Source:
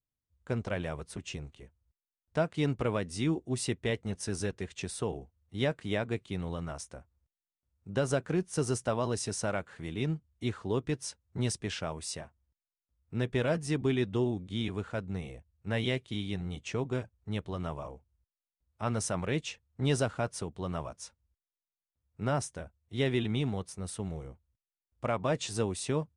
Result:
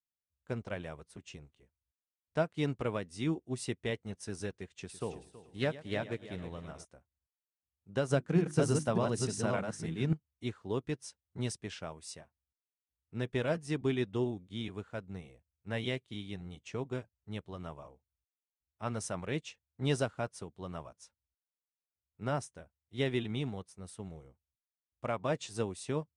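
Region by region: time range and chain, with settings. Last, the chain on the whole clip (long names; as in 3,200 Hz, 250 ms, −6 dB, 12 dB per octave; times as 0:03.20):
0:04.71–0:06.85: echo machine with several playback heads 108 ms, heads first and third, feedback 45%, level −11.5 dB + highs frequency-modulated by the lows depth 0.12 ms
0:08.09–0:10.13: delay that plays each chunk backwards 296 ms, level −2.5 dB + parametric band 170 Hz +7.5 dB 1.1 octaves + mains-hum notches 50/100/150/200/250/300/350 Hz
whole clip: low-shelf EQ 66 Hz −5.5 dB; expander for the loud parts 1.5 to 1, over −51 dBFS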